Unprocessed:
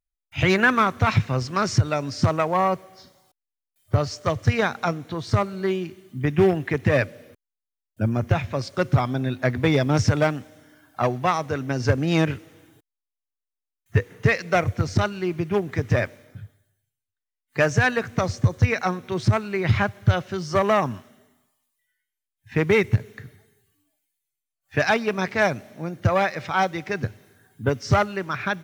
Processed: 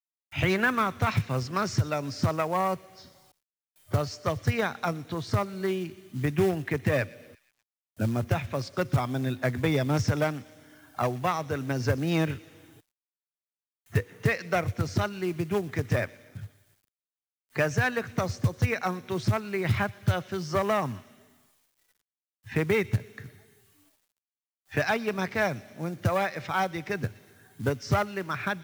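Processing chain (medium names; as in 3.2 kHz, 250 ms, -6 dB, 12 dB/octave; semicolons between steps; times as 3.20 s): feedback echo behind a high-pass 120 ms, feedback 45%, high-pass 2.8 kHz, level -17 dB; companded quantiser 6-bit; three bands compressed up and down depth 40%; trim -5.5 dB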